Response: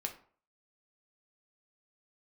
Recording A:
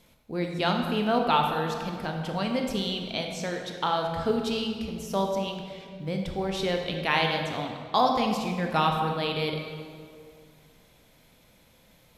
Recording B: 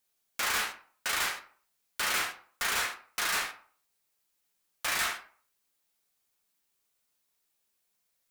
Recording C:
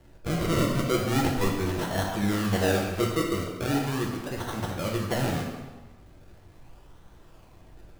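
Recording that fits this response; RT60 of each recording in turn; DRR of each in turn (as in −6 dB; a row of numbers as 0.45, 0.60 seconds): B; 2.1, 0.50, 1.3 seconds; 2.0, 2.5, −1.5 decibels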